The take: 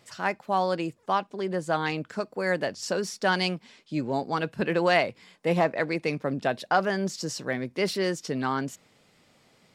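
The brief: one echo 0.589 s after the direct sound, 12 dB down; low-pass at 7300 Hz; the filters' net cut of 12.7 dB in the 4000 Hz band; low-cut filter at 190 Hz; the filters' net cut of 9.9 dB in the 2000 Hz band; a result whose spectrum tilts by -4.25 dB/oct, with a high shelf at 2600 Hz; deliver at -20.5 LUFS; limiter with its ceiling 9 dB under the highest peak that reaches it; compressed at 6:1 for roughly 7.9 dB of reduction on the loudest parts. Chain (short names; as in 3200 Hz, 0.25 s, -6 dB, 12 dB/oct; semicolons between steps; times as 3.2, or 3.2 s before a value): HPF 190 Hz; LPF 7300 Hz; bell 2000 Hz -8.5 dB; high shelf 2600 Hz -9 dB; bell 4000 Hz -5.5 dB; compressor 6:1, threshold -29 dBFS; limiter -26.5 dBFS; echo 0.589 s -12 dB; gain +16.5 dB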